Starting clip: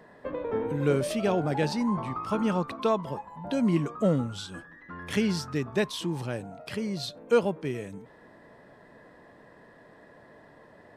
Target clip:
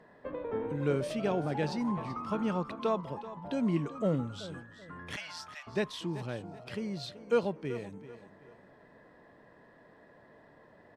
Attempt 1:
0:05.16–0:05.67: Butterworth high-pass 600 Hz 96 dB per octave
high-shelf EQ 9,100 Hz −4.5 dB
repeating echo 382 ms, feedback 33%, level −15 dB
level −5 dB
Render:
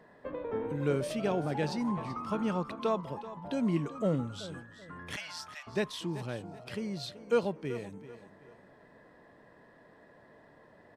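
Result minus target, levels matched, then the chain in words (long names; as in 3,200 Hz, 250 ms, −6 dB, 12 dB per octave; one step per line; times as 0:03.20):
8,000 Hz band +3.0 dB
0:05.16–0:05.67: Butterworth high-pass 600 Hz 96 dB per octave
high-shelf EQ 9,100 Hz −13 dB
repeating echo 382 ms, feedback 33%, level −15 dB
level −5 dB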